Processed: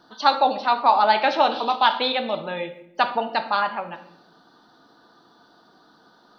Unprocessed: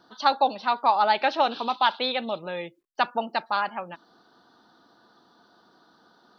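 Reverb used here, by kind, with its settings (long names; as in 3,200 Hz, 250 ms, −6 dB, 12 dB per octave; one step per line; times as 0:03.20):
rectangular room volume 210 cubic metres, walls mixed, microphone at 0.46 metres
level +3 dB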